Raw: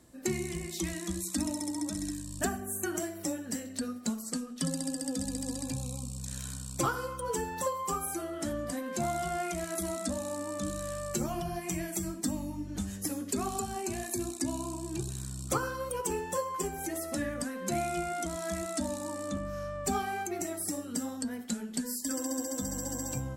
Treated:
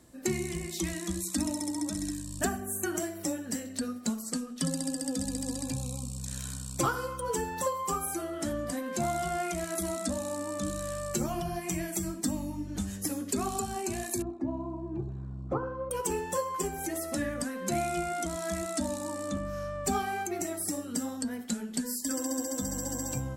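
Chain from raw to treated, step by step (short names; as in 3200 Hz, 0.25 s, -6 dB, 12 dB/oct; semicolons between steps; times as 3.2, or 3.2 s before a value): 14.22–15.91 Chebyshev low-pass 800 Hz, order 2; gain +1.5 dB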